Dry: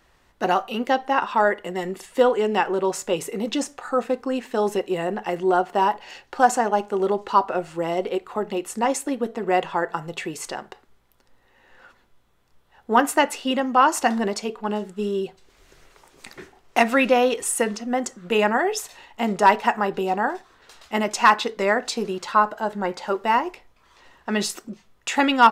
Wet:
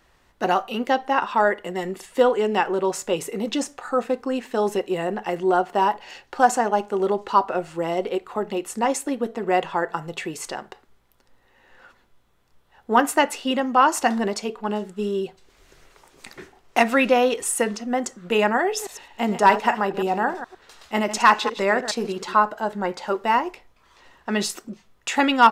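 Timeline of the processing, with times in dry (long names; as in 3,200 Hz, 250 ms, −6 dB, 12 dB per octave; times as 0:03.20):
0:18.66–0:22.36: delay that plays each chunk backwards 105 ms, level −10.5 dB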